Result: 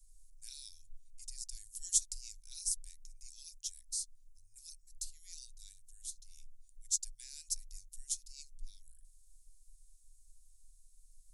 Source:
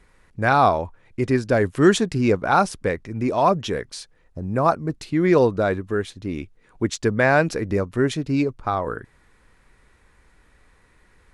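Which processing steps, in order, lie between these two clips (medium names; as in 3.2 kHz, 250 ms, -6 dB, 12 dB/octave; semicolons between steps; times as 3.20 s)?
inverse Chebyshev band-stop 140–1300 Hz, stop band 80 dB; trim +4 dB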